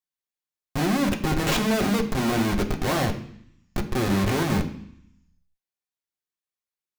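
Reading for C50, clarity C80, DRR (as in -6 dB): 11.0 dB, 14.0 dB, 1.5 dB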